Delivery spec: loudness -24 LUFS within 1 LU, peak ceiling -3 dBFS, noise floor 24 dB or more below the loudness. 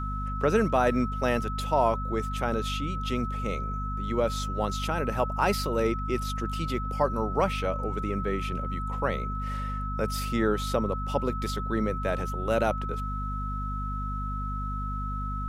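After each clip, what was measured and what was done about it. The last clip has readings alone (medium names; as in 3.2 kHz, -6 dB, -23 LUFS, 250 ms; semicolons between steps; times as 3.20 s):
hum 50 Hz; highest harmonic 250 Hz; hum level -30 dBFS; steady tone 1.3 kHz; tone level -34 dBFS; loudness -29.0 LUFS; peak level -11.0 dBFS; loudness target -24.0 LUFS
-> hum notches 50/100/150/200/250 Hz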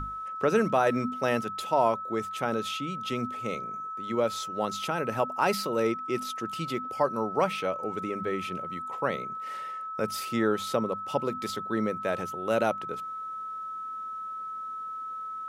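hum not found; steady tone 1.3 kHz; tone level -34 dBFS
-> band-stop 1.3 kHz, Q 30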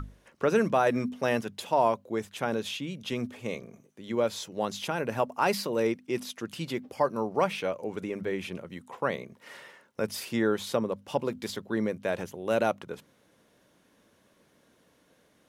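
steady tone not found; loudness -30.5 LUFS; peak level -12.0 dBFS; loudness target -24.0 LUFS
-> trim +6.5 dB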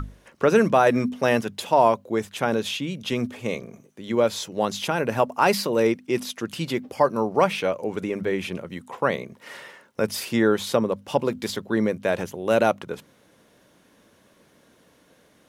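loudness -24.0 LUFS; peak level -5.5 dBFS; noise floor -59 dBFS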